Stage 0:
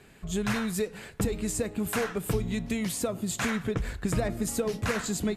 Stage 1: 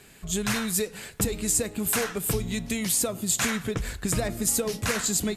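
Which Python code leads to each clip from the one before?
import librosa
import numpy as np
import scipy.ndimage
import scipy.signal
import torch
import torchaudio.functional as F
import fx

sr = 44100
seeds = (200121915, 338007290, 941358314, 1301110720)

y = fx.high_shelf(x, sr, hz=3500.0, db=12.0)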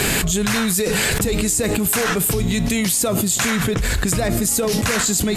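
y = fx.env_flatten(x, sr, amount_pct=100)
y = F.gain(torch.from_numpy(y), 2.5).numpy()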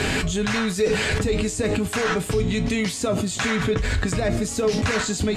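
y = fx.air_absorb(x, sr, metres=96.0)
y = fx.comb_fb(y, sr, f0_hz=87.0, decay_s=0.18, harmonics='odd', damping=0.0, mix_pct=70)
y = F.gain(torch.from_numpy(y), 4.5).numpy()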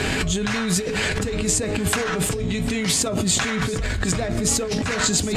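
y = fx.over_compress(x, sr, threshold_db=-28.0, ratio=-1.0)
y = y + 10.0 ** (-15.5 / 20.0) * np.pad(y, (int(752 * sr / 1000.0), 0))[:len(y)]
y = F.gain(torch.from_numpy(y), 5.0).numpy()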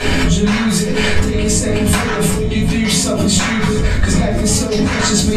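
y = fx.room_shoebox(x, sr, seeds[0], volume_m3=230.0, walls='furnished', distance_m=5.8)
y = F.gain(torch.from_numpy(y), -4.0).numpy()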